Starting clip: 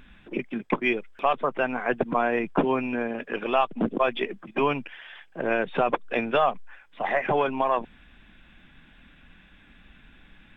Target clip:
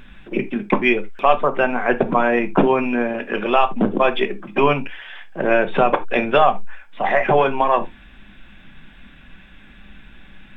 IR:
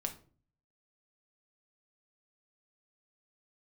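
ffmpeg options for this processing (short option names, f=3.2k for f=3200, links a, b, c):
-filter_complex "[0:a]asplit=2[a][b];[1:a]atrim=start_sample=2205,atrim=end_sample=3969[c];[b][c]afir=irnorm=-1:irlink=0,volume=4.5dB[d];[a][d]amix=inputs=2:normalize=0,volume=-1dB"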